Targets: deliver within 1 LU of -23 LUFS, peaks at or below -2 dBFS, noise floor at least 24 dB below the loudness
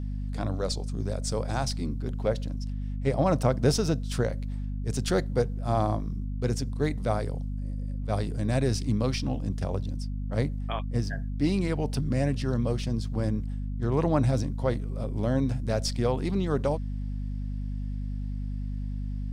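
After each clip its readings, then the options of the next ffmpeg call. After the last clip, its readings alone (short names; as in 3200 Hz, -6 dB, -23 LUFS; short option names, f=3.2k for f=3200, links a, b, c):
hum 50 Hz; harmonics up to 250 Hz; hum level -29 dBFS; loudness -29.5 LUFS; peak -10.5 dBFS; loudness target -23.0 LUFS
-> -af "bandreject=f=50:t=h:w=4,bandreject=f=100:t=h:w=4,bandreject=f=150:t=h:w=4,bandreject=f=200:t=h:w=4,bandreject=f=250:t=h:w=4"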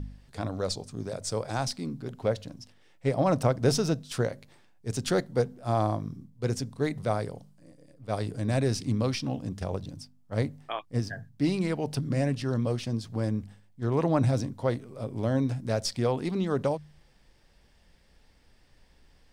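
hum none; loudness -30.0 LUFS; peak -9.5 dBFS; loudness target -23.0 LUFS
-> -af "volume=7dB"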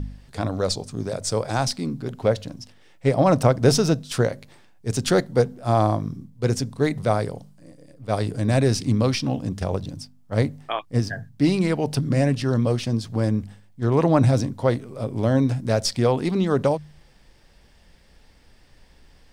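loudness -23.0 LUFS; peak -2.5 dBFS; noise floor -54 dBFS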